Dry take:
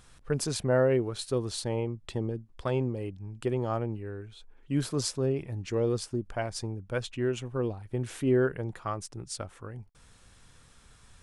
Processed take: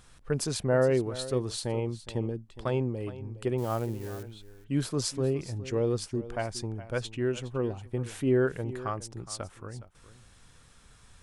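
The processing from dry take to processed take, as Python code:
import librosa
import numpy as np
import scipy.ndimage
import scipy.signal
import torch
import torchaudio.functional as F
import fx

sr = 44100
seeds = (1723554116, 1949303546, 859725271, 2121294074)

y = fx.crossing_spikes(x, sr, level_db=-34.0, at=(3.58, 4.23))
y = y + 10.0 ** (-15.5 / 20.0) * np.pad(y, (int(415 * sr / 1000.0), 0))[:len(y)]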